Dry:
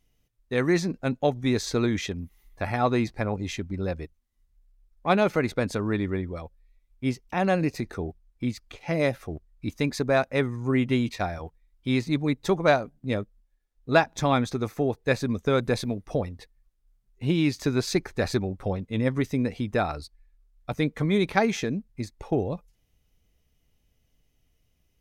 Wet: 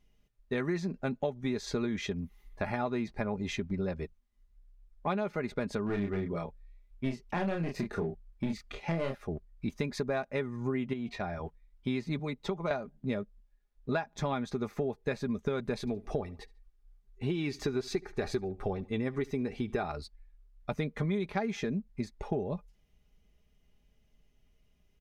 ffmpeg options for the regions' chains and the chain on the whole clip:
ffmpeg -i in.wav -filter_complex "[0:a]asettb=1/sr,asplit=3[link_01][link_02][link_03];[link_01]atrim=end=5.864[link_04];[link_02]atrim=start=5.86:end=9.15,asetpts=PTS-STARTPTS,afade=type=in:duration=0.004:curve=qsin,afade=type=out:start_time=3.286:duration=0.004:curve=qsin,aeval=exprs='clip(val(0),-1,0.0473)':channel_layout=same,asplit=2[link_05][link_06];[link_06]adelay=30,volume=-4dB[link_07];[link_05][link_07]amix=inputs=2:normalize=0,atrim=end_sample=145089[link_08];[link_03]atrim=start=9.146[link_09];[link_04][link_08]acrossfade=duration=0.004:curve1=hsin:curve2=qsin[link_10];[link_10][link_09]acrossfade=duration=0.004:curve1=qsin:curve2=hsin,asettb=1/sr,asplit=3[link_11][link_12][link_13];[link_11]atrim=end=10.934[link_14];[link_12]atrim=start=10.93:end=11.44,asetpts=PTS-STARTPTS,afade=type=in:duration=0.004:curve=qsin,afade=type=out:start_time=0.506:duration=0.004:curve=qsin,highshelf=frequency=5500:gain=-10.5,acompressor=threshold=-34dB:ratio=2:attack=3.2:release=140:knee=1:detection=peak,aeval=exprs='val(0)+0.00126*sin(2*PI*710*n/s)':channel_layout=same[link_15];[link_13]atrim=start=11.436[link_16];[link_14][link_15]acrossfade=duration=0.004:curve1=hsin:curve2=qsin[link_17];[link_17][link_16]acrossfade=duration=0.004:curve1=qsin:curve2=hsin,asettb=1/sr,asplit=3[link_18][link_19][link_20];[link_18]atrim=end=12.194[link_21];[link_19]atrim=start=12.19:end=12.71,asetpts=PTS-STARTPTS,afade=type=in:duration=0.004:curve=qsin,afade=type=out:start_time=0.516:duration=0.004:curve=qsin,bandreject=frequency=1700:width=5.5,acrossover=split=150|710|4900[link_22][link_23][link_24][link_25];[link_22]acompressor=threshold=-47dB:ratio=3[link_26];[link_23]acompressor=threshold=-33dB:ratio=3[link_27];[link_24]acompressor=threshold=-39dB:ratio=3[link_28];[link_25]acompressor=threshold=-55dB:ratio=3[link_29];[link_26][link_27][link_28][link_29]amix=inputs=4:normalize=0[link_30];[link_20]atrim=start=12.706[link_31];[link_21][link_30]acrossfade=duration=0.004:curve1=hsin:curve2=qsin[link_32];[link_32][link_31]acrossfade=duration=0.004:curve1=qsin:curve2=hsin,asettb=1/sr,asplit=3[link_33][link_34][link_35];[link_33]atrim=end=15.804[link_36];[link_34]atrim=start=15.8:end=19.84,asetpts=PTS-STARTPTS,afade=type=in:duration=0.004:curve=qsin,afade=type=out:start_time=4.036:duration=0.004:curve=qsin,aecho=1:1:2.6:0.43,atrim=end_sample=178164,aecho=1:1:72|144:0.0668|0.0214,atrim=end_sample=178164[link_37];[link_35]atrim=start=19.836[link_38];[link_36][link_37]acrossfade=duration=0.004:curve1=hsin:curve2=qsin[link_39];[link_39][link_38]acrossfade=duration=0.004:curve1=qsin:curve2=hsin,aecho=1:1:4.9:0.48,acompressor=threshold=-29dB:ratio=6,lowpass=frequency=3400:poles=1" out.wav

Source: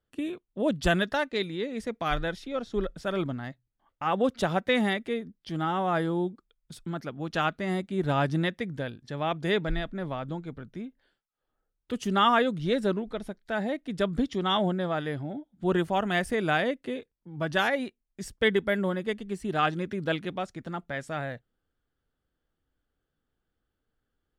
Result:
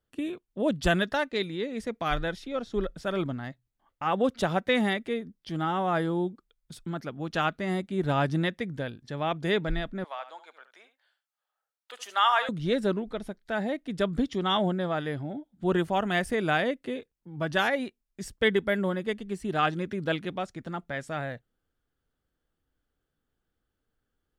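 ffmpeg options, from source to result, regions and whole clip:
ffmpeg -i in.wav -filter_complex "[0:a]asettb=1/sr,asplit=3[link_01][link_02][link_03];[link_01]atrim=end=10.044[link_04];[link_02]atrim=start=10.04:end=12.49,asetpts=PTS-STARTPTS,afade=type=in:duration=0.004:curve=qsin,afade=type=out:start_time=2.446:duration=0.004:curve=qsin,highpass=frequency=690:width=0.5412,highpass=frequency=690:width=1.3066,aecho=1:1:72:0.251,atrim=end_sample=108045[link_05];[link_03]atrim=start=12.486[link_06];[link_04][link_05]acrossfade=duration=0.004:curve1=hsin:curve2=qsin[link_07];[link_07][link_06]acrossfade=duration=0.004:curve1=qsin:curve2=hsin" out.wav

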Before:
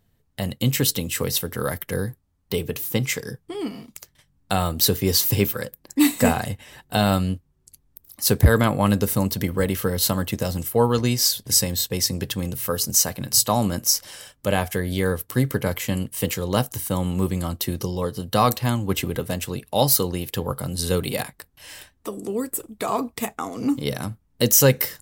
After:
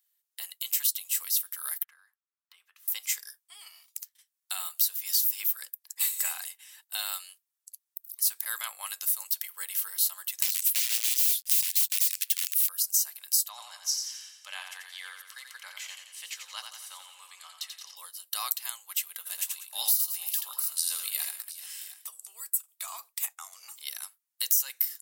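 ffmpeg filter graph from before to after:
ffmpeg -i in.wav -filter_complex "[0:a]asettb=1/sr,asplit=3[link_01][link_02][link_03];[link_01]atrim=end=1.844[link_04];[link_02]atrim=start=1.84:end=2.88,asetpts=PTS-STARTPTS,afade=type=in:duration=0.004:curve=qsin,afade=type=out:start_time=1.036:duration=0.004:curve=qsin,bandpass=frequency=1300:width_type=q:width=2.3,acompressor=threshold=-44dB:ratio=3:attack=3.2:release=140:knee=1:detection=peak[link_05];[link_03]atrim=start=2.876[link_06];[link_04][link_05]acrossfade=duration=0.004:curve1=hsin:curve2=qsin[link_07];[link_07][link_06]acrossfade=duration=0.004:curve1=qsin:curve2=hsin,asettb=1/sr,asplit=3[link_08][link_09][link_10];[link_08]atrim=end=10.424[link_11];[link_09]atrim=start=10.42:end=12.69,asetpts=PTS-STARTPTS,afade=type=in:duration=0.004:curve=qsin,afade=type=out:start_time=2.266:duration=0.004:curve=qsin,aeval=exprs='(mod(10.6*val(0)+1,2)-1)/10.6':channel_layout=same,acrusher=bits=7:mix=0:aa=0.5,highshelf=frequency=1700:width_type=q:width=1.5:gain=10.5[link_12];[link_10]atrim=start=12.686[link_13];[link_11][link_12]acrossfade=duration=0.004:curve1=hsin:curve2=qsin[link_14];[link_14][link_13]acrossfade=duration=0.004:curve1=qsin:curve2=hsin,asettb=1/sr,asplit=3[link_15][link_16][link_17];[link_15]atrim=end=13.494[link_18];[link_16]atrim=start=13.49:end=17.96,asetpts=PTS-STARTPTS,afade=type=in:duration=0.004:curve=qsin,afade=type=out:start_time=4.466:duration=0.004:curve=qsin,highpass=550,lowpass=4700,aecho=1:1:87|174|261|348|435|522|609:0.501|0.266|0.141|0.0746|0.0395|0.021|0.0111,atrim=end_sample=197127[link_19];[link_17]atrim=start=17.956[link_20];[link_18][link_19]acrossfade=duration=0.004:curve1=hsin:curve2=qsin[link_21];[link_21][link_20]acrossfade=duration=0.004:curve1=qsin:curve2=hsin,asettb=1/sr,asplit=3[link_22][link_23][link_24];[link_22]atrim=end=19.174[link_25];[link_23]atrim=start=19.17:end=22.09,asetpts=PTS-STARTPTS,afade=type=in:duration=0.004:curve=qsin,afade=type=out:start_time=2.916:duration=0.004:curve=qsin,asplit=2[link_26][link_27];[link_27]adelay=18,volume=-12dB[link_28];[link_26][link_28]amix=inputs=2:normalize=0,atrim=end_sample=128772,aecho=1:1:82|192|433|713:0.596|0.168|0.158|0.15,atrim=end_sample=128772[link_29];[link_24]atrim=start=22.086[link_30];[link_25][link_29]acrossfade=duration=0.004:curve1=hsin:curve2=qsin[link_31];[link_31][link_30]acrossfade=duration=0.004:curve1=qsin:curve2=hsin,highpass=frequency=850:width=0.5412,highpass=frequency=850:width=1.3066,aderivative,acompressor=threshold=-23dB:ratio=4" out.wav

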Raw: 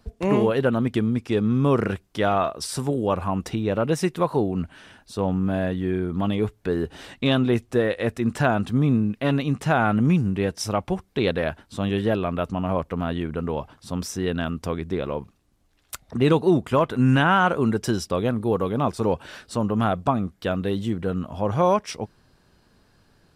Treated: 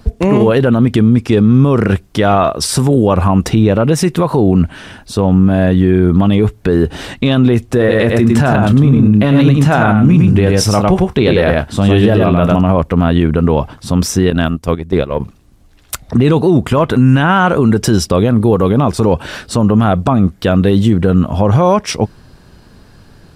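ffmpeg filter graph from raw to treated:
ffmpeg -i in.wav -filter_complex "[0:a]asettb=1/sr,asplit=3[link_01][link_02][link_03];[link_01]atrim=end=7.784[link_04];[link_02]atrim=start=7.78:end=12.61,asetpts=PTS-STARTPTS,afade=type=in:duration=0.004:curve=qsin,afade=type=out:start_time=4.826:duration=0.004:curve=qsin,asplit=2[link_05][link_06];[link_06]adelay=29,volume=-13dB[link_07];[link_05][link_07]amix=inputs=2:normalize=0,atrim=end_sample=213003,aecho=1:1:104:0.631,atrim=end_sample=213003[link_08];[link_03]atrim=start=12.606[link_09];[link_04][link_08]acrossfade=duration=0.004:curve1=hsin:curve2=qsin[link_10];[link_10][link_09]acrossfade=duration=0.004:curve1=qsin:curve2=hsin,asettb=1/sr,asplit=3[link_11][link_12][link_13];[link_11]atrim=end=14.304[link_14];[link_12]atrim=start=14.3:end=15.2,asetpts=PTS-STARTPTS,afade=type=in:duration=0.004:curve=qsin,afade=type=out:start_time=0.896:duration=0.004:curve=qsin,agate=range=-13dB:threshold=-27dB:ratio=16:release=100:detection=peak,highshelf=frequency=6600:gain=6.5[link_15];[link_13]atrim=start=15.196[link_16];[link_14][link_15]acrossfade=duration=0.004:curve1=hsin:curve2=qsin[link_17];[link_17][link_16]acrossfade=duration=0.004:curve1=qsin:curve2=hsin,lowshelf=frequency=260:gain=6,alimiter=level_in=15dB:limit=-1dB:release=50:level=0:latency=1,volume=-1dB" out.wav

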